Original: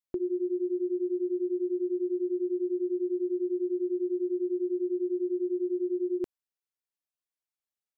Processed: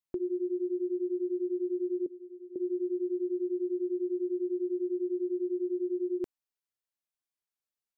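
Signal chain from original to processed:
0:02.06–0:02.56: formant filter i
level −2 dB

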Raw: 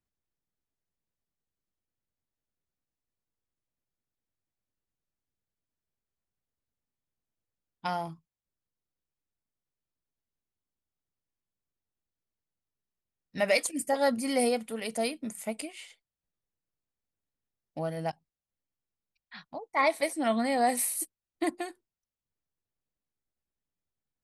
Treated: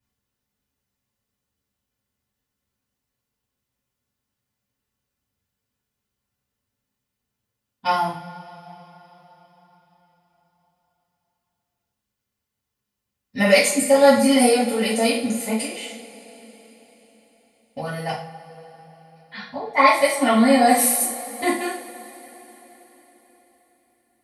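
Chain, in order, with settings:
notch comb filter 320 Hz
coupled-rooms reverb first 0.45 s, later 4.5 s, from −22 dB, DRR −9.5 dB
level +3 dB

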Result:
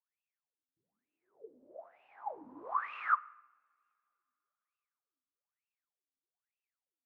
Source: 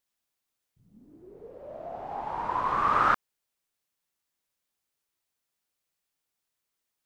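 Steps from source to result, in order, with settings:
LFO wah 1.1 Hz 250–2,700 Hz, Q 19
coupled-rooms reverb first 0.81 s, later 3.2 s, from −25 dB, DRR 17.5 dB
level +4.5 dB

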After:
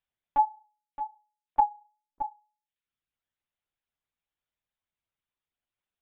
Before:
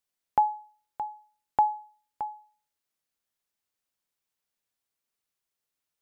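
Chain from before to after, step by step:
reverb reduction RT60 0.79 s
0:01.69–0:02.34: spectral tilt −3.5 dB per octave
linear-prediction vocoder at 8 kHz pitch kept

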